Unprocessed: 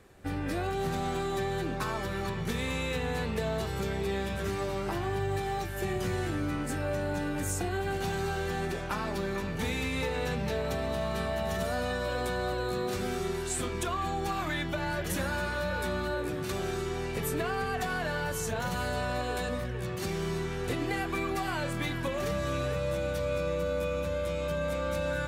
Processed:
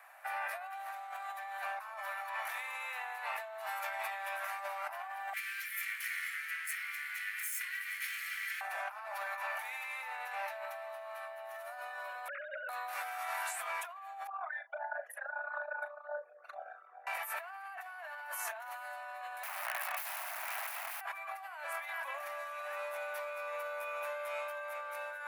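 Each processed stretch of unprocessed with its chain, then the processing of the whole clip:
5.33–8.61 minimum comb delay 0.92 ms + steep high-pass 1600 Hz 48 dB/oct
12.28–12.69 sine-wave speech + flutter echo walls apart 11.6 m, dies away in 0.49 s
14.27–17.07 formant sharpening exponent 3 + HPF 440 Hz + doubler 37 ms -13 dB
19.43–21.01 tilt shelf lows -3.5 dB, about 1200 Hz + wrapped overs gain 30.5 dB
whole clip: steep high-pass 640 Hz 72 dB/oct; band shelf 5100 Hz -12.5 dB; negative-ratio compressor -44 dBFS, ratio -1; gain +2.5 dB

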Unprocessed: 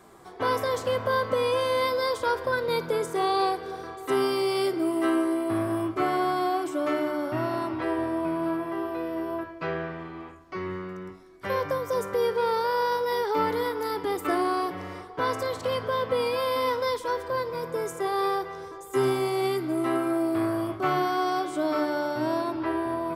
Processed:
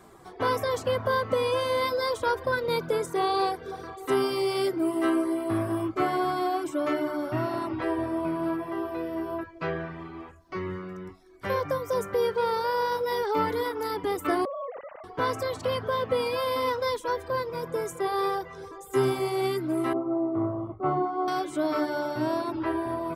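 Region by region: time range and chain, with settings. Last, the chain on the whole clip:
14.45–15.04 sine-wave speech + tilt shelf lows +10 dB, about 780 Hz + compressor 2.5:1, threshold -33 dBFS
19.93–21.28 polynomial smoothing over 65 samples + three-band expander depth 70%
whole clip: reverb removal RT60 0.54 s; low shelf 160 Hz +5 dB

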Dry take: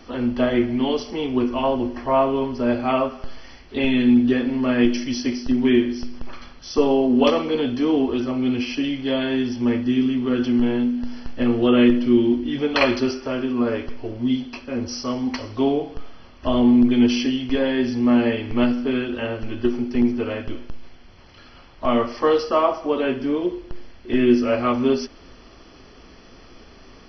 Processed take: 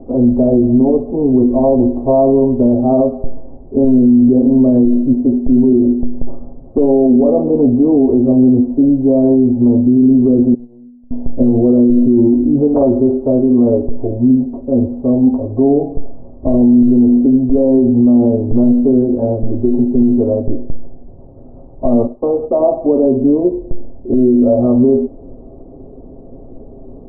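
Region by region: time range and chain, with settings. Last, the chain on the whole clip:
10.54–11.11 gate -15 dBFS, range -31 dB + compressor 4:1, threshold -43 dBFS
22.07–22.6 expander -27 dBFS + dynamic EQ 830 Hz, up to +4 dB, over -28 dBFS, Q 1.2 + compressor 2:1, threshold -24 dBFS
whole clip: steep low-pass 690 Hz 36 dB/oct; comb 7.5 ms, depth 38%; maximiser +14.5 dB; gain -2.5 dB

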